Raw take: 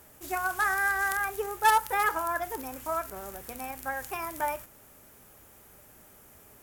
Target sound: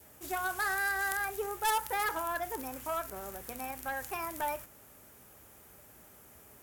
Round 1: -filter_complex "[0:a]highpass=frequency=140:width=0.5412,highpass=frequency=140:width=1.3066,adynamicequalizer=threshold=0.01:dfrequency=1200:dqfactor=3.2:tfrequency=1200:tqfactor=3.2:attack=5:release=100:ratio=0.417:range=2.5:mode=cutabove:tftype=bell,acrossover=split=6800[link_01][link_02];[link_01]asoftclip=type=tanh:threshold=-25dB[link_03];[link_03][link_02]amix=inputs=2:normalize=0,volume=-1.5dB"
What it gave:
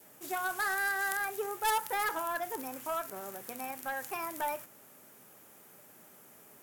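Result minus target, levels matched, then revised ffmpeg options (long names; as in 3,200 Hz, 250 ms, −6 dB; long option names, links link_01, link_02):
125 Hz band −7.0 dB
-filter_complex "[0:a]highpass=frequency=42:width=0.5412,highpass=frequency=42:width=1.3066,adynamicequalizer=threshold=0.01:dfrequency=1200:dqfactor=3.2:tfrequency=1200:tqfactor=3.2:attack=5:release=100:ratio=0.417:range=2.5:mode=cutabove:tftype=bell,acrossover=split=6800[link_01][link_02];[link_01]asoftclip=type=tanh:threshold=-25dB[link_03];[link_03][link_02]amix=inputs=2:normalize=0,volume=-1.5dB"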